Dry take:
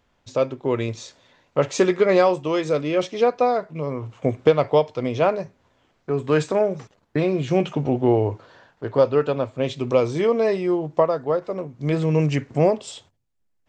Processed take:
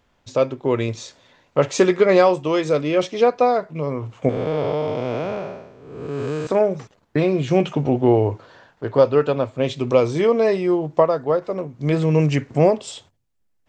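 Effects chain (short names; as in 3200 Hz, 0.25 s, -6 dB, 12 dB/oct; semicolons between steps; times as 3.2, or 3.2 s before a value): 4.29–6.47 time blur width 0.414 s; gain +2.5 dB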